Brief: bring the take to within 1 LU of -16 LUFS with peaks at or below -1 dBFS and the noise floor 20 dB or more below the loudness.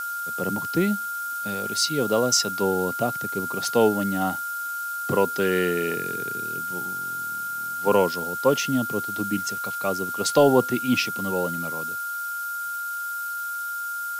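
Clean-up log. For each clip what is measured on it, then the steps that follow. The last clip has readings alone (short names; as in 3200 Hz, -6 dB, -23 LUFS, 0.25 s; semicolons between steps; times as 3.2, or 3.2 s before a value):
steady tone 1400 Hz; tone level -28 dBFS; noise floor -31 dBFS; noise floor target -45 dBFS; loudness -24.5 LUFS; peak -5.5 dBFS; loudness target -16.0 LUFS
-> notch 1400 Hz, Q 30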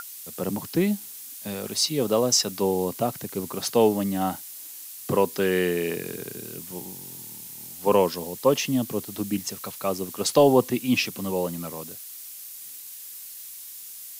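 steady tone none; noise floor -41 dBFS; noise floor target -45 dBFS
-> noise print and reduce 6 dB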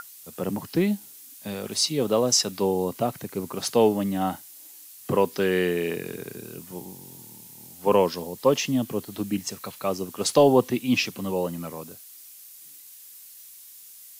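noise floor -47 dBFS; loudness -25.0 LUFS; peak -6.0 dBFS; loudness target -16.0 LUFS
-> gain +9 dB; limiter -1 dBFS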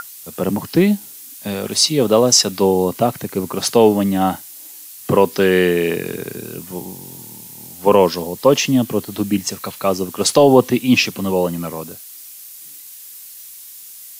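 loudness -16.5 LUFS; peak -1.0 dBFS; noise floor -38 dBFS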